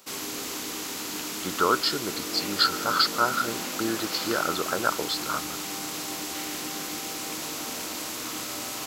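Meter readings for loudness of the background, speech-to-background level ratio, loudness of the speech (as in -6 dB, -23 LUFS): -31.5 LUFS, 5.0 dB, -26.5 LUFS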